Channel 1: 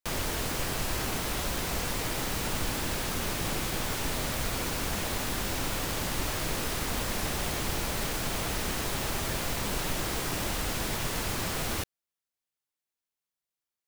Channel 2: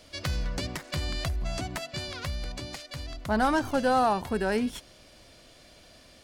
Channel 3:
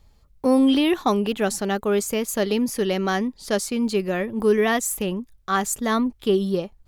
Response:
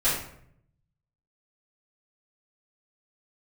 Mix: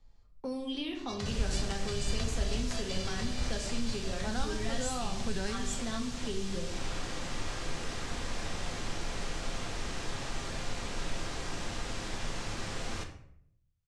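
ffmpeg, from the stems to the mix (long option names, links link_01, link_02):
-filter_complex "[0:a]adelay=1200,volume=-8.5dB,asplit=2[link_01][link_02];[link_02]volume=-15dB[link_03];[1:a]adelay=950,volume=-1dB,asplit=2[link_04][link_05];[link_05]volume=-18dB[link_06];[2:a]volume=-14dB,asplit=3[link_07][link_08][link_09];[link_08]volume=-10dB[link_10];[link_09]apad=whole_len=316930[link_11];[link_04][link_11]sidechaincompress=threshold=-37dB:ratio=8:attack=16:release=524[link_12];[3:a]atrim=start_sample=2205[link_13];[link_03][link_06][link_10]amix=inputs=3:normalize=0[link_14];[link_14][link_13]afir=irnorm=-1:irlink=0[link_15];[link_01][link_12][link_07][link_15]amix=inputs=4:normalize=0,lowpass=frequency=7700:width=0.5412,lowpass=frequency=7700:width=1.3066,acrossover=split=150|3000[link_16][link_17][link_18];[link_17]acompressor=threshold=-37dB:ratio=6[link_19];[link_16][link_19][link_18]amix=inputs=3:normalize=0"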